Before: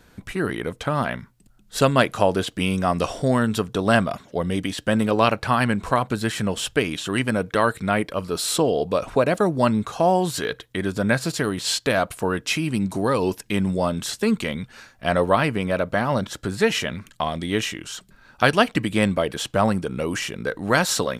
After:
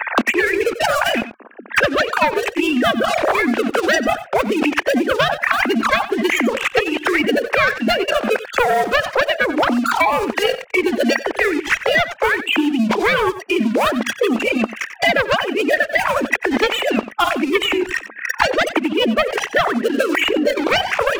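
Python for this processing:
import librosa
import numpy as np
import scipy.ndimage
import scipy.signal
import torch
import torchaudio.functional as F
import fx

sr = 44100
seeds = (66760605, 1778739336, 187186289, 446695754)

p1 = fx.sine_speech(x, sr)
p2 = scipy.signal.sosfilt(scipy.signal.cheby1(5, 1.0, [220.0, 2300.0], 'bandpass', fs=sr, output='sos'), p1)
p3 = fx.leveller(p2, sr, passes=2)
p4 = fx.over_compress(p3, sr, threshold_db=-31.0, ratio=-1.0)
p5 = p3 + F.gain(torch.from_numpy(p4), 1.5).numpy()
p6 = fx.formant_shift(p5, sr, semitones=3)
p7 = p6 + fx.echo_single(p6, sr, ms=91, db=-15.5, dry=0)
p8 = fx.band_squash(p7, sr, depth_pct=100)
y = F.gain(torch.from_numpy(p8), -1.0).numpy()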